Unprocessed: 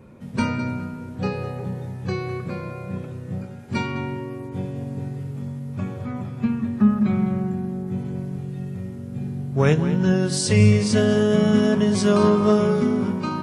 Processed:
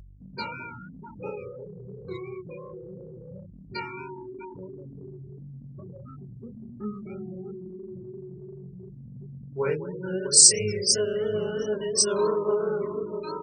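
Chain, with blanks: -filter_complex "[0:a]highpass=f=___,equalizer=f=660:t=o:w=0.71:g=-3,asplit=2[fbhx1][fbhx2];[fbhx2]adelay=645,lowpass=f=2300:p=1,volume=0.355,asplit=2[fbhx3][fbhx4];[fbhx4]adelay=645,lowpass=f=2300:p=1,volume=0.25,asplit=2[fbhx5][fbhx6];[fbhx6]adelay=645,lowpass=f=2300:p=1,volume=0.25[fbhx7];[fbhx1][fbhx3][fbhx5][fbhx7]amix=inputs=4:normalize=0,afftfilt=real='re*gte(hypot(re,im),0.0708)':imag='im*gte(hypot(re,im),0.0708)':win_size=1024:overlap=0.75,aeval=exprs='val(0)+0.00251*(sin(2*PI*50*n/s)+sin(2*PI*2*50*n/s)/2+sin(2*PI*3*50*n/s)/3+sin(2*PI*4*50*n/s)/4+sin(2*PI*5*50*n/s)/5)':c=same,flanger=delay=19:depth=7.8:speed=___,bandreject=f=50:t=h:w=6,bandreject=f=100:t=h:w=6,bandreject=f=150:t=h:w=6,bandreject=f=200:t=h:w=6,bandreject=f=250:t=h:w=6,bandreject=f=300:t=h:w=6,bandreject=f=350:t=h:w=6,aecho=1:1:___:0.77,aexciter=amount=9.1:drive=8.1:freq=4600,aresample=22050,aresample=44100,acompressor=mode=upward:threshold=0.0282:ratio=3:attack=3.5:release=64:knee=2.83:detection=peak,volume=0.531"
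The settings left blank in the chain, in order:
210, 2.9, 2.1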